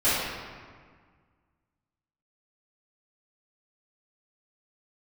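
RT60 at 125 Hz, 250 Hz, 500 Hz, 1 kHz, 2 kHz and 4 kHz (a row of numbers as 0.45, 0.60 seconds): 2.2, 2.1, 1.7, 1.7, 1.5, 1.1 seconds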